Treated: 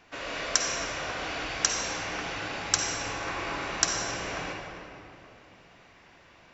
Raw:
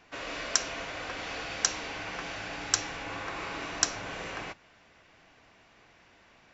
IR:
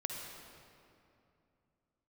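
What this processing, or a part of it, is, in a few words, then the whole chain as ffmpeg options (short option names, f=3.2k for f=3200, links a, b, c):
stairwell: -filter_complex "[1:a]atrim=start_sample=2205[a];[0:a][a]afir=irnorm=-1:irlink=0,volume=2.5dB"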